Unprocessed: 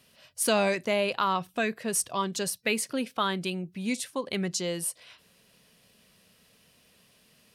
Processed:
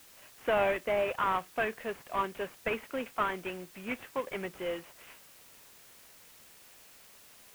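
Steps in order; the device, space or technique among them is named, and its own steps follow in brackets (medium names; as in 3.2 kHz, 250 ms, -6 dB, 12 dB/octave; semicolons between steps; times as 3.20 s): army field radio (band-pass 390–2800 Hz; CVSD coder 16 kbps; white noise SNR 21 dB)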